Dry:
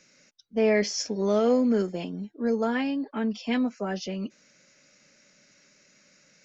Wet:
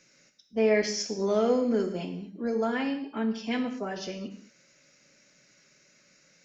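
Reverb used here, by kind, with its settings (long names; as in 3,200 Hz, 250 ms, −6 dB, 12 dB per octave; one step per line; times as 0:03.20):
reverb whose tail is shaped and stops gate 250 ms falling, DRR 5.5 dB
level −2.5 dB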